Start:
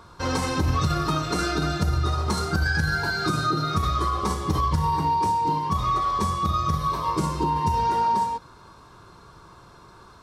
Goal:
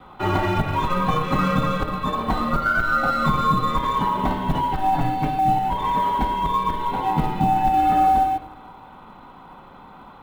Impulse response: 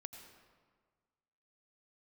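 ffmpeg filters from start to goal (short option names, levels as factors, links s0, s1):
-filter_complex "[0:a]adynamicequalizer=threshold=0.0112:dfrequency=1100:dqfactor=7.2:tfrequency=1100:tqfactor=7.2:attack=5:release=100:ratio=0.375:range=3:mode=cutabove:tftype=bell,asplit=2[s0][s1];[1:a]atrim=start_sample=2205,asetrate=70560,aresample=44100[s2];[s1][s2]afir=irnorm=-1:irlink=0,volume=3.16[s3];[s0][s3]amix=inputs=2:normalize=0,highpass=f=180:t=q:w=0.5412,highpass=f=180:t=q:w=1.307,lowpass=f=3400:t=q:w=0.5176,lowpass=f=3400:t=q:w=0.7071,lowpass=f=3400:t=q:w=1.932,afreqshift=-160,acrossover=split=2300[s4][s5];[s5]aeval=exprs='clip(val(0),-1,0.00891)':c=same[s6];[s4][s6]amix=inputs=2:normalize=0,asettb=1/sr,asplit=3[s7][s8][s9];[s7]atrim=end=4.944[s10];[s8]atrim=start=4.94:end=5.39,asetpts=PTS-STARTPTS,afade=t=in:d=0.004:c=qsin,afade=t=out:st=0.446:d=0.004:c=qsin,aecho=1:1:7.1:0.79,atrim=end_sample=19845[s11];[s9]atrim=start=5.386[s12];[s10][s11]acrossfade=d=0.004:c1=hsin:c2=qsin[s13];[s13][s12]acrossfade=d=0.004:c1=qsin:c2=hsin,acrusher=bits=8:mode=log:mix=0:aa=0.000001"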